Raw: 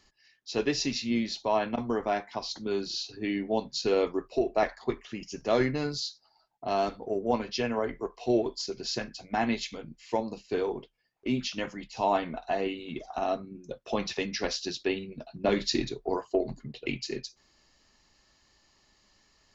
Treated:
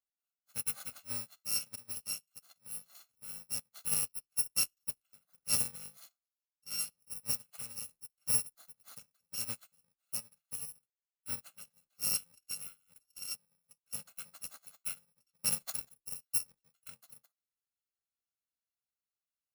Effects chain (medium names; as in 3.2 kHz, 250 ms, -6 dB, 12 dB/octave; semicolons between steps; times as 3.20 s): bit-reversed sample order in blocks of 128 samples; high-pass 160 Hz 6 dB/octave; upward expansion 2.5:1, over -41 dBFS; trim -3.5 dB